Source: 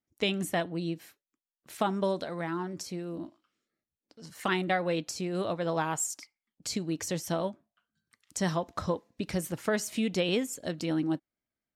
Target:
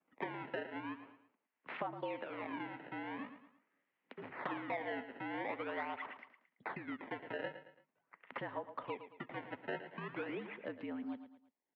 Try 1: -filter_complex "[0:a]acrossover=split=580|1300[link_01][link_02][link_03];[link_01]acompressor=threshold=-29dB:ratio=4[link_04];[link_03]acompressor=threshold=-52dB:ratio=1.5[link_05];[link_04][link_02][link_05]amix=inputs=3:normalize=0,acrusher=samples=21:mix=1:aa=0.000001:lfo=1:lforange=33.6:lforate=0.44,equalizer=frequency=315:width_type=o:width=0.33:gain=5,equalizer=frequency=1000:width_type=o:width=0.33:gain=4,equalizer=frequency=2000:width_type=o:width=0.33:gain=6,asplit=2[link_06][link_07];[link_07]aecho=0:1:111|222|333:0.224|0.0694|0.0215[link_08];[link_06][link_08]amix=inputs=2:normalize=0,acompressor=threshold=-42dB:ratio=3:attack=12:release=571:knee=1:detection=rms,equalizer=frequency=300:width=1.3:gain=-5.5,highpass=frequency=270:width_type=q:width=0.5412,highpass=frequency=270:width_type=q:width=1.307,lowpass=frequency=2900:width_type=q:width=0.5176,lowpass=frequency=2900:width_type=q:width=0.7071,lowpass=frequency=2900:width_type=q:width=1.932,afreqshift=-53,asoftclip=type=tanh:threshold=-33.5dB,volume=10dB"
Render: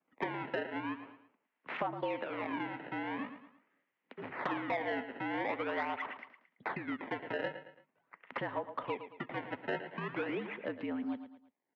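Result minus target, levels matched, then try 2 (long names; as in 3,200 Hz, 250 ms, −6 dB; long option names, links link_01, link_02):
downward compressor: peak gain reduction −5.5 dB
-filter_complex "[0:a]acrossover=split=580|1300[link_01][link_02][link_03];[link_01]acompressor=threshold=-29dB:ratio=4[link_04];[link_03]acompressor=threshold=-52dB:ratio=1.5[link_05];[link_04][link_02][link_05]amix=inputs=3:normalize=0,acrusher=samples=21:mix=1:aa=0.000001:lfo=1:lforange=33.6:lforate=0.44,equalizer=frequency=315:width_type=o:width=0.33:gain=5,equalizer=frequency=1000:width_type=o:width=0.33:gain=4,equalizer=frequency=2000:width_type=o:width=0.33:gain=6,asplit=2[link_06][link_07];[link_07]aecho=0:1:111|222|333:0.224|0.0694|0.0215[link_08];[link_06][link_08]amix=inputs=2:normalize=0,acompressor=threshold=-50.5dB:ratio=3:attack=12:release=571:knee=1:detection=rms,equalizer=frequency=300:width=1.3:gain=-5.5,highpass=frequency=270:width_type=q:width=0.5412,highpass=frequency=270:width_type=q:width=1.307,lowpass=frequency=2900:width_type=q:width=0.5176,lowpass=frequency=2900:width_type=q:width=0.7071,lowpass=frequency=2900:width_type=q:width=1.932,afreqshift=-53,asoftclip=type=tanh:threshold=-33.5dB,volume=10dB"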